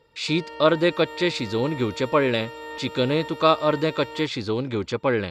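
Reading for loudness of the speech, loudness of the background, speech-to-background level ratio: -23.5 LUFS, -37.5 LUFS, 14.0 dB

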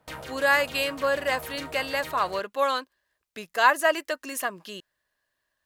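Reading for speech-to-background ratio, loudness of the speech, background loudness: 14.5 dB, -25.5 LUFS, -40.0 LUFS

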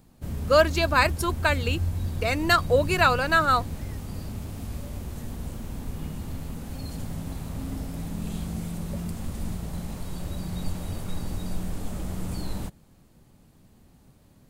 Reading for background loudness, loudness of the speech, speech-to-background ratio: -33.5 LUFS, -23.0 LUFS, 10.5 dB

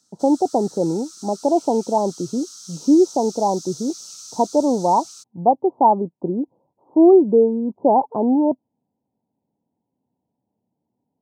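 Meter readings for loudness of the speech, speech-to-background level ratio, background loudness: -19.0 LUFS, 18.5 dB, -37.5 LUFS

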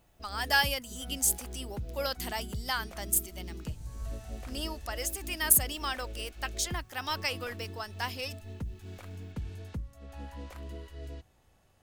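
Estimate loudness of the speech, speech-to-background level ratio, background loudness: -31.0 LUFS, 12.5 dB, -43.5 LUFS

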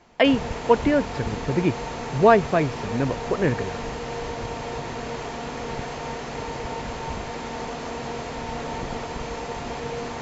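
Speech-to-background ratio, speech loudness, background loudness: 9.0 dB, -22.5 LUFS, -31.5 LUFS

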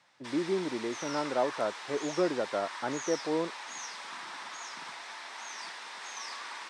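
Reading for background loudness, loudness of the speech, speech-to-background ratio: -40.5 LUFS, -33.0 LUFS, 7.5 dB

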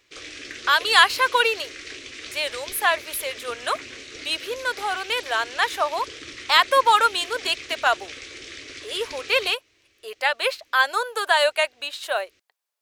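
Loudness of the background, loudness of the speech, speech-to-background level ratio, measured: -37.0 LUFS, -22.0 LUFS, 15.0 dB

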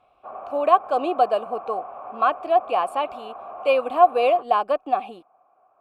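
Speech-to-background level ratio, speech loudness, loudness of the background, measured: 15.5 dB, -22.0 LUFS, -37.5 LUFS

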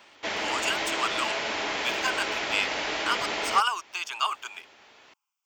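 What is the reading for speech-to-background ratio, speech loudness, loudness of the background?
-1.0 dB, -30.0 LUFS, -29.0 LUFS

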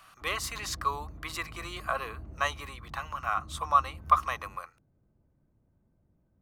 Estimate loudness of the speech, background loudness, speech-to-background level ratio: -31.5 LUFS, -47.0 LUFS, 15.5 dB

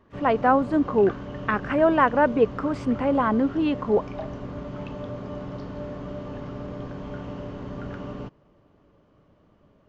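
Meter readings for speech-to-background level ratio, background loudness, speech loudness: 13.5 dB, -36.0 LUFS, -22.5 LUFS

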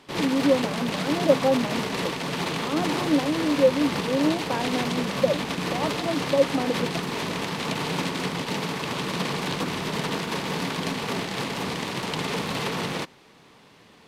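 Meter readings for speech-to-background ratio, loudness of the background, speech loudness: 2.5 dB, -28.0 LUFS, -25.5 LUFS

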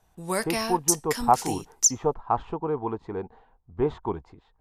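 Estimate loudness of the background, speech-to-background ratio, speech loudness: -26.0 LUFS, -3.0 dB, -29.0 LUFS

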